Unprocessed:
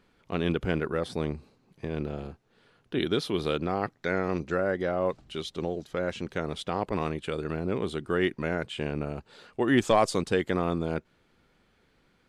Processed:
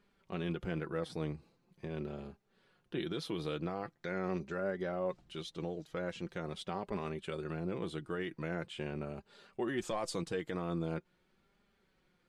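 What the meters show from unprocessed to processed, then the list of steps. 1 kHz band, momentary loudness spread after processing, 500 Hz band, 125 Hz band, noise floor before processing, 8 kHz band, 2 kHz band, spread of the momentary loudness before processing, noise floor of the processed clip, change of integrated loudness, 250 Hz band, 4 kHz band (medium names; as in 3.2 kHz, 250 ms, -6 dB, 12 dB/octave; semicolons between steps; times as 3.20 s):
-11.5 dB, 7 LU, -10.0 dB, -7.5 dB, -67 dBFS, -8.0 dB, -10.5 dB, 11 LU, -75 dBFS, -9.5 dB, -9.0 dB, -9.5 dB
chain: peak limiter -18.5 dBFS, peak gain reduction 7 dB; flange 0.43 Hz, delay 4.9 ms, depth 1.5 ms, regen +35%; trim -4 dB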